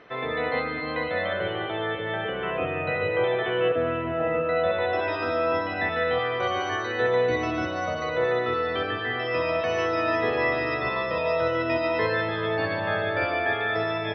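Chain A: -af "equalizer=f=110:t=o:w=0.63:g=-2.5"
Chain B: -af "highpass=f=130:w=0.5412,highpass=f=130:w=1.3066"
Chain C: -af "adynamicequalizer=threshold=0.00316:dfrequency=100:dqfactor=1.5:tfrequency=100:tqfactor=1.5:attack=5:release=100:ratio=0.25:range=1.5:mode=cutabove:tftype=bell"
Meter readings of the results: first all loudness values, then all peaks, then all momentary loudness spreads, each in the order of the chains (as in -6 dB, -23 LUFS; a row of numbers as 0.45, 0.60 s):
-26.0, -26.0, -26.0 LUFS; -13.0, -12.0, -13.0 dBFS; 4, 4, 4 LU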